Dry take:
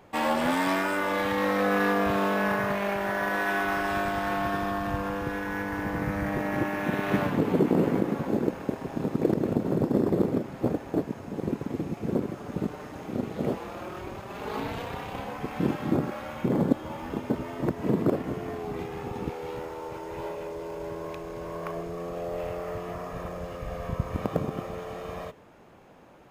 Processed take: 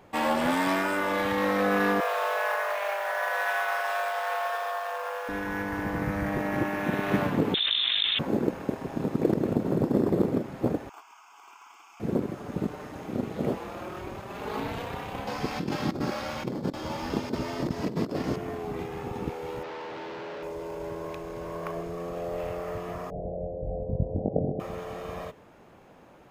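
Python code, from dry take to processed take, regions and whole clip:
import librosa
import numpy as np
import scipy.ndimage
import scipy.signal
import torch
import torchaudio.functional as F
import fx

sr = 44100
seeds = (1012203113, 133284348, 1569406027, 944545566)

y = fx.chain(x, sr, fx.steep_highpass(hz=470.0, slope=72),
    fx.mod_noise(seeds[0], snr_db=27), at=(2.0, 5.29))
y = fx.chain(y, sr, fx.highpass(hz=770.0, slope=6),
    fx.freq_invert(carrier_hz=3900),
    fx.env_flatten(amount_pct=100), at=(7.54, 8.19))
y = fx.chain(y, sr, fx.highpass(hz=900.0, slope=24),
    fx.fixed_phaser(hz=2700.0, stages=8), at=(10.89, 12.0))
y = fx.chain(y, sr, fx.peak_eq(hz=4900.0, db=13.5, octaves=0.81),
    fx.over_compress(threshold_db=-28.0, ratio=-0.5), at=(15.27, 18.36))
y = fx.chain(y, sr, fx.clip_1bit(),
    fx.highpass(hz=180.0, slope=12),
    fx.air_absorb(metres=230.0), at=(19.63, 20.43))
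y = fx.chain(y, sr, fx.steep_lowpass(hz=770.0, slope=72),
    fx.doubler(ms=21.0, db=-2.5), at=(23.1, 24.6))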